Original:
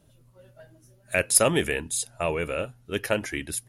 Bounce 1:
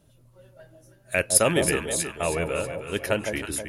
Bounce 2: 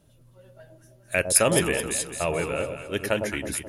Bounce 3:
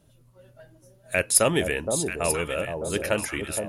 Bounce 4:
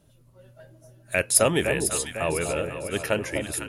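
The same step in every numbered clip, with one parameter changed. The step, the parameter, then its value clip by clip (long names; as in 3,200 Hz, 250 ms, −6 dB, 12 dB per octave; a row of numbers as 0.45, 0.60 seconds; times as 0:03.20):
delay that swaps between a low-pass and a high-pass, delay time: 160, 107, 469, 250 milliseconds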